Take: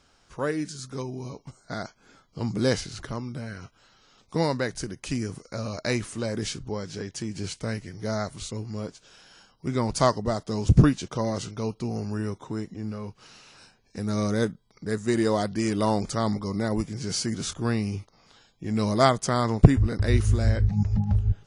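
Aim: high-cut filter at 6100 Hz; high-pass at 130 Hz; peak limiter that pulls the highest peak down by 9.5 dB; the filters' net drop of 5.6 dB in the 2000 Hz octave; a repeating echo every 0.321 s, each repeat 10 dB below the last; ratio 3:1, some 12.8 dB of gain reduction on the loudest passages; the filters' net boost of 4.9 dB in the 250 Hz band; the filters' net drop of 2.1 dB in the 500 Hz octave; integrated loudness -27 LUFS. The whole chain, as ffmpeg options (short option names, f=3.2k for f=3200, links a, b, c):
-af "highpass=130,lowpass=6.1k,equalizer=f=250:t=o:g=8,equalizer=f=500:t=o:g=-5,equalizer=f=2k:t=o:g=-7,acompressor=threshold=-25dB:ratio=3,alimiter=limit=-19dB:level=0:latency=1,aecho=1:1:321|642|963|1284:0.316|0.101|0.0324|0.0104,volume=4dB"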